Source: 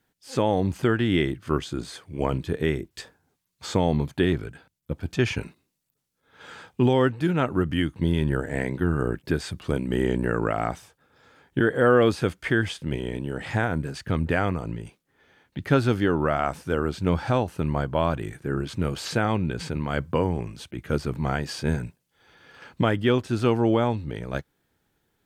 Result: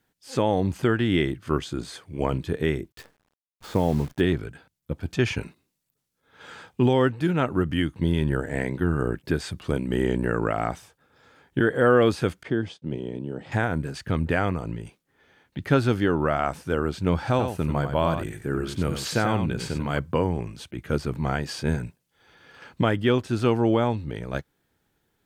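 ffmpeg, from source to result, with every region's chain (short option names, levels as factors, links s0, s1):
-filter_complex "[0:a]asettb=1/sr,asplit=3[s0][s1][s2];[s0]atrim=end=2.924[s3];[s1]atrim=start=2.92:end=4.21,asetpts=PTS-STARTPTS,afade=t=in:d=0.004:c=qsin,afade=t=out:st=1.286:d=0.004:c=qsin,lowpass=f=1500:p=1,acrusher=bits=8:dc=4:mix=0:aa=0.000001[s4];[s2]atrim=start=4.206[s5];[s3][s4]acrossfade=d=0.004:c1=hsin:c2=qsin[s6];[s6][s5]acrossfade=d=0.004:c1=qsin:c2=hsin,asettb=1/sr,asplit=3[s7][s8][s9];[s7]atrim=end=12.434[s10];[s8]atrim=start=12.43:end=13.52,asetpts=PTS-STARTPTS,afade=t=in:d=0.004:c=qsin,afade=t=out:st=1.086:d=0.004:c=qsin,agate=range=0.0224:threshold=0.0178:ratio=3:release=100:detection=peak,highpass=130,lowpass=4100,equalizer=f=1900:w=0.72:g=-12.5[s11];[s9]atrim=start=13.516[s12];[s10][s11]acrossfade=d=0.004:c1=hsin:c2=qsin[s13];[s13][s12]acrossfade=d=0.004:c1=qsin:c2=hsin,asettb=1/sr,asplit=3[s14][s15][s16];[s14]atrim=end=17.304[s17];[s15]atrim=start=17.3:end=19.99,asetpts=PTS-STARTPTS,afade=t=in:d=0.004:c=qsin,afade=t=out:st=2.686:d=0.004:c=qsin,highshelf=f=8600:g=7,aecho=1:1:90:0.422,atrim=end_sample=118629[s18];[s16]atrim=start=19.986[s19];[s17][s18]acrossfade=d=0.004:c1=hsin:c2=qsin[s20];[s20][s19]acrossfade=d=0.004:c1=qsin:c2=hsin"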